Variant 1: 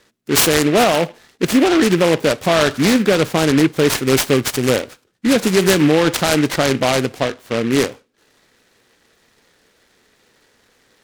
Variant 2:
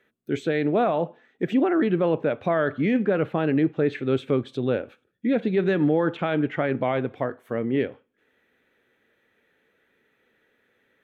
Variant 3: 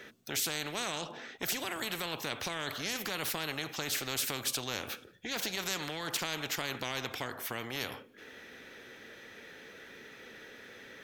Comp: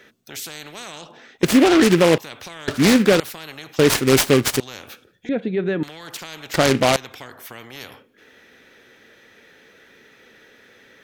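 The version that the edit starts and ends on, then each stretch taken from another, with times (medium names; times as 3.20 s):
3
1.43–2.18 s: from 1
2.68–3.20 s: from 1
3.79–4.60 s: from 1
5.29–5.83 s: from 2
6.54–6.96 s: from 1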